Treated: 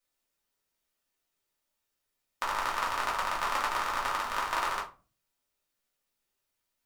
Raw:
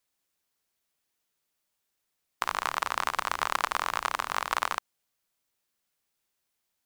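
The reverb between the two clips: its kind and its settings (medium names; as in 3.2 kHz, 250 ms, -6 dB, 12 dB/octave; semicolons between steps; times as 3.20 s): simulated room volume 160 m³, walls furnished, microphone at 2.6 m; trim -7 dB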